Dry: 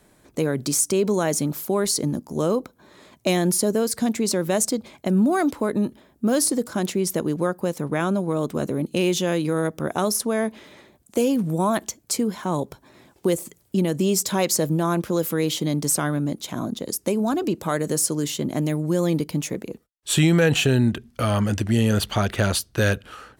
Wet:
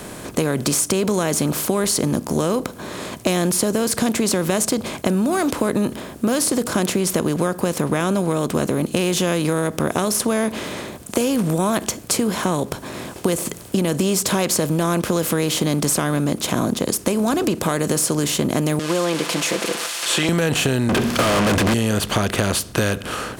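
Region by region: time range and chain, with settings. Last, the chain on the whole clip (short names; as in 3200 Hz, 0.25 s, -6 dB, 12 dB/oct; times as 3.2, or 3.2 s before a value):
18.79–20.29 switching spikes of -18 dBFS + BPF 510–4200 Hz + comb 5.9 ms, depth 77%
20.89–21.74 bell 8800 Hz -7.5 dB 0.39 oct + compressor 2.5:1, threshold -27 dBFS + overdrive pedal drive 42 dB, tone 2900 Hz, clips at -11.5 dBFS
whole clip: per-bin compression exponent 0.6; compressor, threshold -18 dBFS; gain +2.5 dB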